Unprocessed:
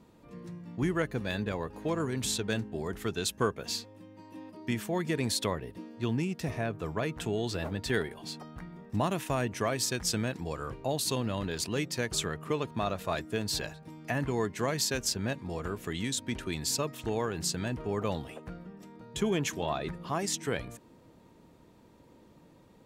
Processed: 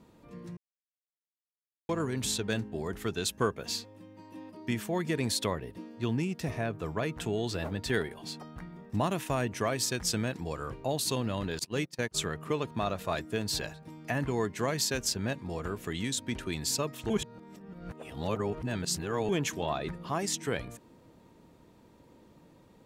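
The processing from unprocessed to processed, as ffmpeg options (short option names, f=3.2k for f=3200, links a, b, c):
-filter_complex "[0:a]asettb=1/sr,asplit=3[a][b][c];[a]atrim=end=11.594[d];[b]atrim=start=11.59:end=12.2,asetpts=PTS-STARTPTS,afade=t=in:d=0.004:c=qsin,afade=t=out:st=0.606:d=0.004:c=qsin,agate=range=-24dB:threshold=-34dB:ratio=16:release=100:detection=peak[e];[c]atrim=start=12.196[f];[d][e]acrossfade=d=0.004:c1=hsin:c2=qsin[g];[g][f]acrossfade=d=0.004:c1=qsin:c2=hsin,asplit=5[h][i][j][k][l];[h]atrim=end=0.57,asetpts=PTS-STARTPTS,afade=t=out:st=0.566:d=0.004:c=hsin[m];[i]atrim=start=0.57:end=1.89,asetpts=PTS-STARTPTS,volume=0[n];[j]atrim=start=1.89:end=17.102,asetpts=PTS-STARTPTS,afade=t=in:d=0.004:c=hsin[o];[k]atrim=start=17.098:end=19.292,asetpts=PTS-STARTPTS,areverse[p];[l]atrim=start=19.288[q];[m][n][o]concat=n=3:v=0:a=1[r];[r][p]acrossfade=d=0.004:c1=hsin:c2=hsin[s];[s][q]acrossfade=d=0.004:c1=hsin:c2=hsin"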